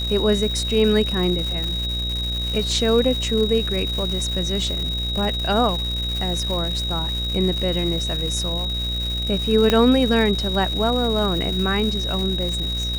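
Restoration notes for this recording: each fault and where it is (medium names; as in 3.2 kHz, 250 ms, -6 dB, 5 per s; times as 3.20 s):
buzz 60 Hz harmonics 12 -27 dBFS
crackle 370 per s -27 dBFS
whine 3.8 kHz -25 dBFS
1.64 s: pop
9.70 s: pop -4 dBFS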